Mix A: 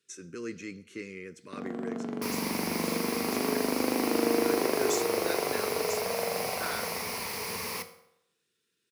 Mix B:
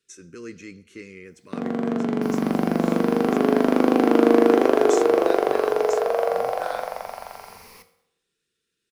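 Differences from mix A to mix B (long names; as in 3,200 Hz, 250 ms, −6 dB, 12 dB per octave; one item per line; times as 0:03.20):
first sound +11.0 dB
second sound −12.0 dB
master: remove high-pass filter 100 Hz 12 dB per octave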